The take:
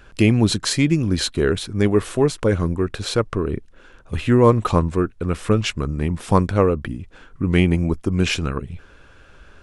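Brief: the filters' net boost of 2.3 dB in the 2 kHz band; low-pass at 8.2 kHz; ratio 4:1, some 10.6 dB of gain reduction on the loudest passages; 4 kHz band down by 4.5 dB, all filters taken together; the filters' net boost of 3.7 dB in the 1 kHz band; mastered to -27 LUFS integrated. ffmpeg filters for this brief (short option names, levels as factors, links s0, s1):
-af "lowpass=8200,equalizer=f=1000:t=o:g=3.5,equalizer=f=2000:t=o:g=4,equalizer=f=4000:t=o:g=-7,acompressor=threshold=0.0891:ratio=4,volume=0.944"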